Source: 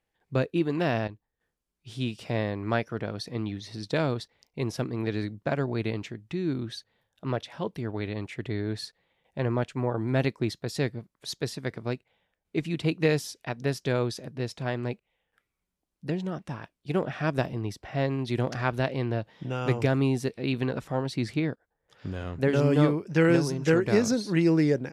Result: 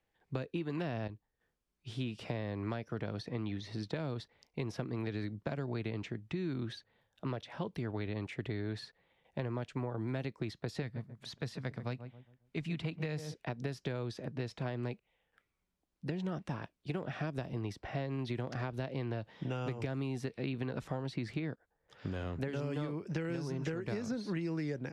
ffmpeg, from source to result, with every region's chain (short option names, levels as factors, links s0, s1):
-filter_complex "[0:a]asettb=1/sr,asplit=3[s0][s1][s2];[s0]atrim=end=10.824[s3];[s1]atrim=start=10.82:end=13.34,asetpts=PTS-STARTPTS,afade=t=in:d=0.004:c=qsin,afade=t=out:st=2.516:d=0.004:c=qsin,equalizer=f=370:t=o:w=0.99:g=-10.5,asplit=2[s4][s5];[s5]adelay=136,lowpass=f=890:p=1,volume=0.224,asplit=2[s6][s7];[s7]adelay=136,lowpass=f=890:p=1,volume=0.37,asplit=2[s8][s9];[s9]adelay=136,lowpass=f=890:p=1,volume=0.37,asplit=2[s10][s11];[s11]adelay=136,lowpass=f=890:p=1,volume=0.37[s12];[s4][s6][s8][s10][s12]amix=inputs=5:normalize=0,atrim=end_sample=111132[s13];[s2]atrim=start=13.336[s14];[s3][s13]acrossfade=d=0.004:c1=hsin:c2=qsin[s15];[s15][s14]acrossfade=d=0.004:c1=qsin:c2=hsin,acompressor=threshold=0.0398:ratio=6,highshelf=f=8200:g=-10.5,acrossover=split=200|790|3000[s16][s17][s18][s19];[s16]acompressor=threshold=0.0112:ratio=4[s20];[s17]acompressor=threshold=0.0112:ratio=4[s21];[s18]acompressor=threshold=0.00447:ratio=4[s22];[s19]acompressor=threshold=0.002:ratio=4[s23];[s20][s21][s22][s23]amix=inputs=4:normalize=0"